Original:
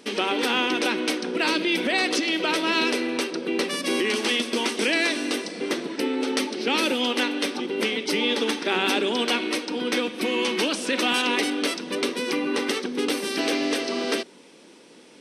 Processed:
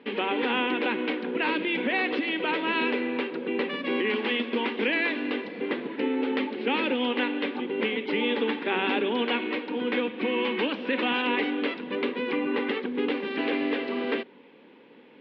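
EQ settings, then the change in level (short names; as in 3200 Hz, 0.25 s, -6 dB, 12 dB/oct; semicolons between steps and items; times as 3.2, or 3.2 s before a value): air absorption 370 m; speaker cabinet 150–3500 Hz, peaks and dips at 180 Hz -5 dB, 340 Hz -7 dB, 650 Hz -8 dB, 1300 Hz -6 dB; +2.5 dB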